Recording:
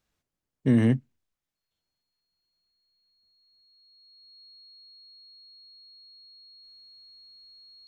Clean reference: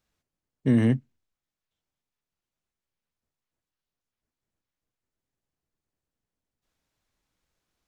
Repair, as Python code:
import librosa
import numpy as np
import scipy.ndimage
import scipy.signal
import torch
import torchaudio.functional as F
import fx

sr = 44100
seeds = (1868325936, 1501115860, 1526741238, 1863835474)

y = fx.notch(x, sr, hz=4300.0, q=30.0)